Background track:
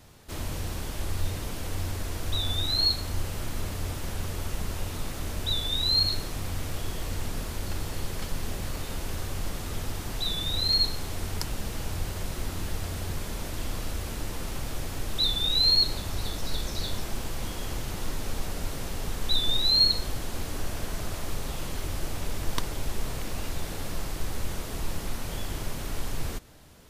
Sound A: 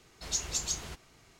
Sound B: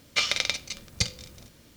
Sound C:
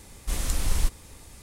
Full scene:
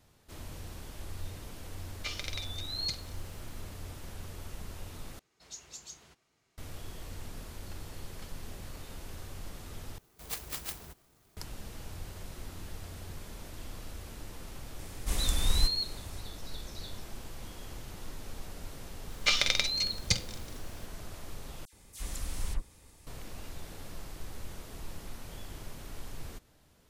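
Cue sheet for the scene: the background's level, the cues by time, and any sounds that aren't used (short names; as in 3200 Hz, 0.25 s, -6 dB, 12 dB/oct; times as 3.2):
background track -11 dB
1.88 add B -14 dB
5.19 replace with A -14 dB + HPF 120 Hz 6 dB/oct
9.98 replace with A -5.5 dB + clock jitter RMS 0.12 ms
14.79 add C -3 dB
19.1 add B -1.5 dB
21.65 replace with C -10 dB + dispersion lows, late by 79 ms, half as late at 2400 Hz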